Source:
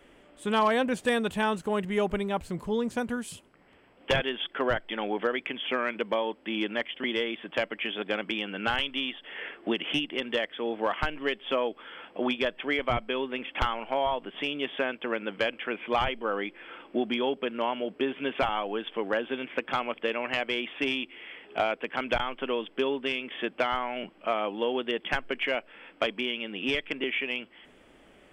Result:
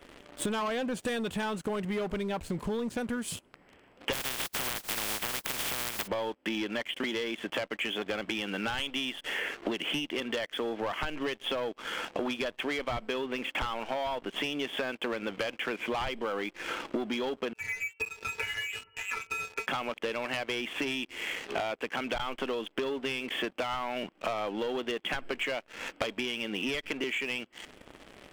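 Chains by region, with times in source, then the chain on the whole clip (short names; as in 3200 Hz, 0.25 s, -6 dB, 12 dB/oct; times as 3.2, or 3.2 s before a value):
4.12–6.06 spectral contrast lowered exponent 0.12 + compressor 2.5:1, threshold -30 dBFS
17.53–19.67 metallic resonator 180 Hz, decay 0.39 s, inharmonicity 0.03 + inverted band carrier 2900 Hz
whole clip: sample leveller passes 3; compressor 12:1, threshold -36 dBFS; gain +5.5 dB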